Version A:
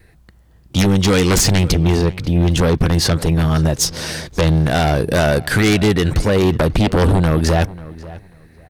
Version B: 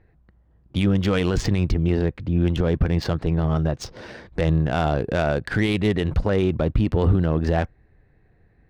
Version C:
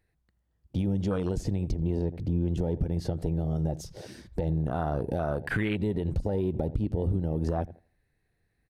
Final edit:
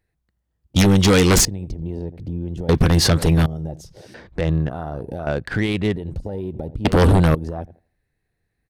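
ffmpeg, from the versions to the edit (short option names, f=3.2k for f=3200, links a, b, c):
-filter_complex "[0:a]asplit=3[a][b][c];[1:a]asplit=2[d][e];[2:a]asplit=6[f][g][h][i][j][k];[f]atrim=end=0.762[l];[a]atrim=start=0.758:end=1.452[m];[g]atrim=start=1.448:end=2.692[n];[b]atrim=start=2.688:end=3.462[o];[h]atrim=start=3.458:end=4.142[p];[d]atrim=start=4.138:end=4.692[q];[i]atrim=start=4.688:end=5.272[r];[e]atrim=start=5.268:end=5.962[s];[j]atrim=start=5.958:end=6.852[t];[c]atrim=start=6.848:end=7.352[u];[k]atrim=start=7.348[v];[l][m]acrossfade=d=0.004:c1=hsin:c2=hsin[w];[w][n]acrossfade=d=0.004:c1=hsin:c2=hsin[x];[x][o]acrossfade=d=0.004:c1=hsin:c2=hsin[y];[y][p]acrossfade=d=0.004:c1=hsin:c2=hsin[z];[z][q]acrossfade=d=0.004:c1=hsin:c2=hsin[aa];[aa][r]acrossfade=d=0.004:c1=hsin:c2=hsin[ab];[ab][s]acrossfade=d=0.004:c1=hsin:c2=hsin[ac];[ac][t]acrossfade=d=0.004:c1=hsin:c2=hsin[ad];[ad][u]acrossfade=d=0.004:c1=hsin:c2=hsin[ae];[ae][v]acrossfade=d=0.004:c1=hsin:c2=hsin"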